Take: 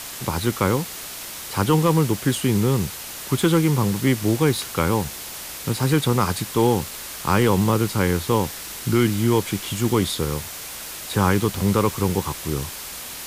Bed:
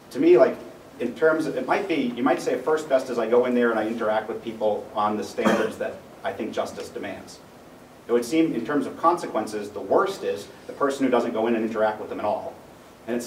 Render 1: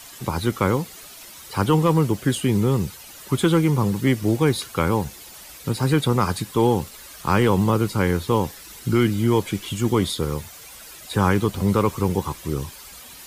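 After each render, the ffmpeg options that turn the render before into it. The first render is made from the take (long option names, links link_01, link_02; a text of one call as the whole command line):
ffmpeg -i in.wav -af "afftdn=noise_reduction=11:noise_floor=-35" out.wav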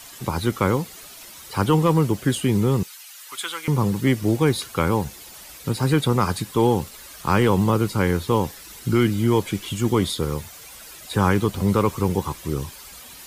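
ffmpeg -i in.wav -filter_complex "[0:a]asettb=1/sr,asplit=3[link_01][link_02][link_03];[link_01]atrim=end=2.834[link_04];[link_02]atrim=start=2.83:end=3.68,asetpts=PTS-STARTPTS,afade=type=in:duration=0.004:curve=qsin,afade=type=out:start_time=0.846:duration=0.004:curve=qsin,highpass=1400[link_05];[link_03]atrim=start=3.676[link_06];[link_04][link_05]acrossfade=duration=0.004:curve1=hsin:curve2=qsin[link_07];[link_07][link_06]acrossfade=duration=0.004:curve1=qsin:curve2=hsin" out.wav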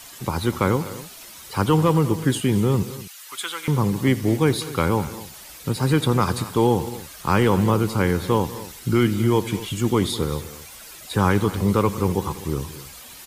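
ffmpeg -i in.wav -af "aecho=1:1:83|196|246:0.119|0.133|0.133" out.wav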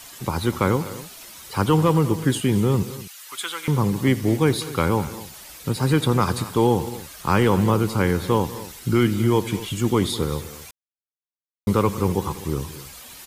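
ffmpeg -i in.wav -filter_complex "[0:a]asplit=3[link_01][link_02][link_03];[link_01]atrim=end=10.71,asetpts=PTS-STARTPTS,afade=type=out:start_time=10.706:duration=0.004:curve=hsin[link_04];[link_02]atrim=start=10.71:end=11.67,asetpts=PTS-STARTPTS,volume=0[link_05];[link_03]atrim=start=11.67,asetpts=PTS-STARTPTS,afade=type=in:duration=0.004:curve=hsin[link_06];[link_04][link_05][link_06]concat=n=3:v=0:a=1" out.wav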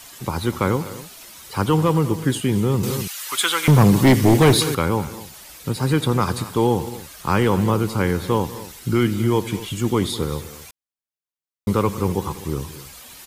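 ffmpeg -i in.wav -filter_complex "[0:a]asettb=1/sr,asplit=3[link_01][link_02][link_03];[link_01]atrim=end=2.834[link_04];[link_02]atrim=start=2.83:end=4.75,asetpts=PTS-STARTPTS,afade=type=in:duration=0.004:curve=qsin,afade=type=out:start_time=1.916:duration=0.004:curve=qsin,aeval=exprs='0.447*sin(PI/2*2*val(0)/0.447)':channel_layout=same[link_05];[link_03]atrim=start=4.746[link_06];[link_04][link_05]acrossfade=duration=0.004:curve1=hsin:curve2=qsin[link_07];[link_07][link_06]acrossfade=duration=0.004:curve1=qsin:curve2=hsin" out.wav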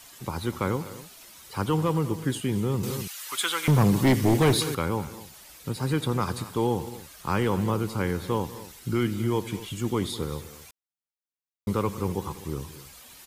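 ffmpeg -i in.wav -af "volume=-7dB" out.wav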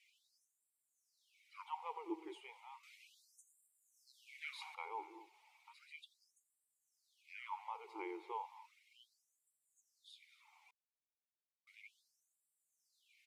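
ffmpeg -i in.wav -filter_complex "[0:a]asplit=3[link_01][link_02][link_03];[link_01]bandpass=frequency=300:width_type=q:width=8,volume=0dB[link_04];[link_02]bandpass=frequency=870:width_type=q:width=8,volume=-6dB[link_05];[link_03]bandpass=frequency=2240:width_type=q:width=8,volume=-9dB[link_06];[link_04][link_05][link_06]amix=inputs=3:normalize=0,afftfilt=real='re*gte(b*sr/1024,320*pow(7300/320,0.5+0.5*sin(2*PI*0.34*pts/sr)))':imag='im*gte(b*sr/1024,320*pow(7300/320,0.5+0.5*sin(2*PI*0.34*pts/sr)))':win_size=1024:overlap=0.75" out.wav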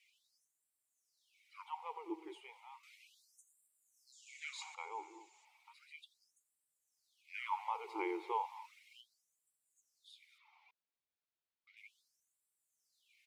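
ffmpeg -i in.wav -filter_complex "[0:a]asettb=1/sr,asplit=3[link_01][link_02][link_03];[link_01]atrim=end=4.124[link_04];[link_02]atrim=start=4.12:end=5.45,asetpts=PTS-STARTPTS,afade=type=in:duration=0.004:curve=qsin,afade=type=out:start_time=1.326:duration=0.004:curve=qsin,lowpass=frequency=7100:width_type=q:width=8.2[link_05];[link_03]atrim=start=5.446[link_06];[link_04][link_05]acrossfade=duration=0.004:curve1=hsin:curve2=qsin[link_07];[link_07][link_06]acrossfade=duration=0.004:curve1=qsin:curve2=hsin,asplit=3[link_08][link_09][link_10];[link_08]afade=type=out:start_time=7.33:duration=0.02[link_11];[link_09]acontrast=80,afade=type=in:start_time=7.33:duration=0.02,afade=type=out:start_time=9:duration=0.02[link_12];[link_10]afade=type=in:start_time=9:duration=0.02[link_13];[link_11][link_12][link_13]amix=inputs=3:normalize=0,asettb=1/sr,asplit=3[link_14][link_15][link_16];[link_14]atrim=end=10.384[link_17];[link_15]atrim=start=10.38:end=11.77,asetpts=PTS-STARTPTS,afade=type=in:duration=0.004:curve=qsin,afade=type=out:start_time=1.386:duration=0.004:curve=qsin,lowpass=frequency=4700:width=0.5412,lowpass=frequency=4700:width=1.3066[link_18];[link_16]atrim=start=11.766[link_19];[link_17][link_18]acrossfade=duration=0.004:curve1=hsin:curve2=qsin[link_20];[link_20][link_19]acrossfade=duration=0.004:curve1=qsin:curve2=hsin" out.wav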